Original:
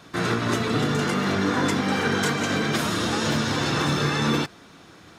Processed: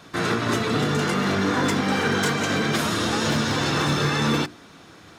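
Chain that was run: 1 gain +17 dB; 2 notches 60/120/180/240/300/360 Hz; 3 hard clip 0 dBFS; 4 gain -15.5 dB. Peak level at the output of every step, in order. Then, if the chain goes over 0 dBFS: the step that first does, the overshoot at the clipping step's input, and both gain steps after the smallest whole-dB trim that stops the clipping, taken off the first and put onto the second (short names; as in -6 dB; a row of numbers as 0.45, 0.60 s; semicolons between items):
+5.5, +5.0, 0.0, -15.5 dBFS; step 1, 5.0 dB; step 1 +12 dB, step 4 -10.5 dB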